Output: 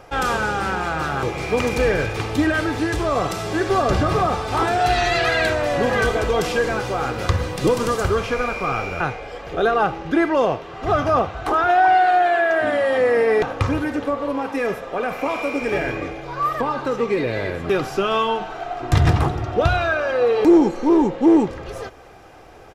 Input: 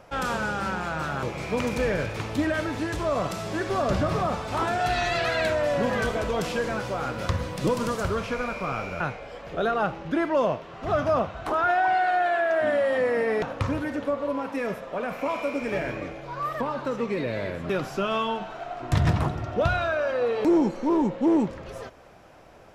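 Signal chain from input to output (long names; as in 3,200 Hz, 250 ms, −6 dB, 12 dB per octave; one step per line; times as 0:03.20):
comb filter 2.5 ms, depth 41%
level +6 dB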